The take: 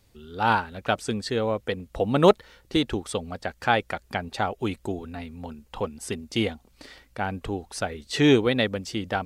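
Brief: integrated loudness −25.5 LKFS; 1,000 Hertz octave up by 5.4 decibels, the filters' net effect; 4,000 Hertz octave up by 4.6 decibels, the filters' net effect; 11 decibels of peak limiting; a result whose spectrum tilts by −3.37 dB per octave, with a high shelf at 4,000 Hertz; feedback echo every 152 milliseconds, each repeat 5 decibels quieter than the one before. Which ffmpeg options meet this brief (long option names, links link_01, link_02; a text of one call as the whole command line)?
ffmpeg -i in.wav -af "equalizer=frequency=1000:width_type=o:gain=7,highshelf=frequency=4000:gain=-4,equalizer=frequency=4000:width_type=o:gain=7.5,alimiter=limit=-12dB:level=0:latency=1,aecho=1:1:152|304|456|608|760|912|1064:0.562|0.315|0.176|0.0988|0.0553|0.031|0.0173,volume=0.5dB" out.wav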